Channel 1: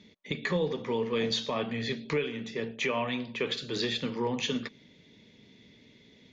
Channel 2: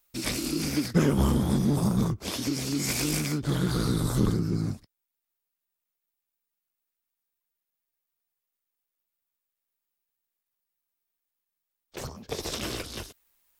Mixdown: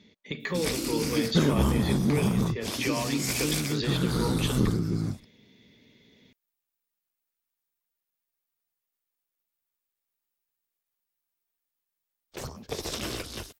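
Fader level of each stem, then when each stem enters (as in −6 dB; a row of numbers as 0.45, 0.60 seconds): −1.5, −0.5 decibels; 0.00, 0.40 seconds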